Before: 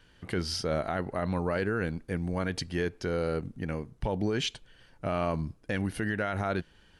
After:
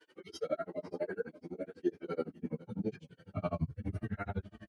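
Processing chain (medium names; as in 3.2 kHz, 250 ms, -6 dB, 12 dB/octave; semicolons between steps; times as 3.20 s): harmonic-percussive separation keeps harmonic; in parallel at 0 dB: compression 10:1, threshold -39 dBFS, peak gain reduction 14 dB; on the sum: feedback delay 800 ms, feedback 38%, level -18 dB; granulator 75 ms, grains 8 per s, spray 34 ms, pitch spread up and down by 0 st; high-pass sweep 360 Hz -> 61 Hz, 2.63–6.31 s; plain phase-vocoder stretch 0.67×; trim +1 dB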